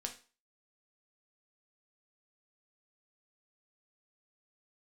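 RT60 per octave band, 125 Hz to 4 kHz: 0.30 s, 0.35 s, 0.35 s, 0.35 s, 0.35 s, 0.35 s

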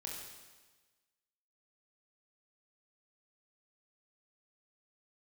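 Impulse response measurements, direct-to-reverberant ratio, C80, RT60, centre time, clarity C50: -2.5 dB, 3.5 dB, 1.3 s, 69 ms, 1.0 dB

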